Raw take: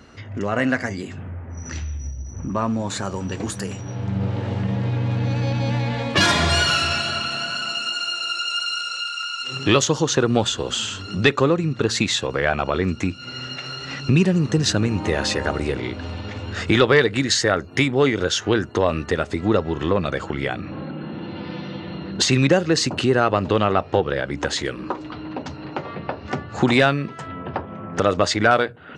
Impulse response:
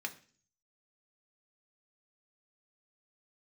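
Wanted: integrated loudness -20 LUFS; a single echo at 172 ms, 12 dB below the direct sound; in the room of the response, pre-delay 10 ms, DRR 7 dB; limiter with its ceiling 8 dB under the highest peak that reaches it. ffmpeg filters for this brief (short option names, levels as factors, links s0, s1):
-filter_complex "[0:a]alimiter=limit=0.266:level=0:latency=1,aecho=1:1:172:0.251,asplit=2[s0][s1];[1:a]atrim=start_sample=2205,adelay=10[s2];[s1][s2]afir=irnorm=-1:irlink=0,volume=0.398[s3];[s0][s3]amix=inputs=2:normalize=0,volume=1.5"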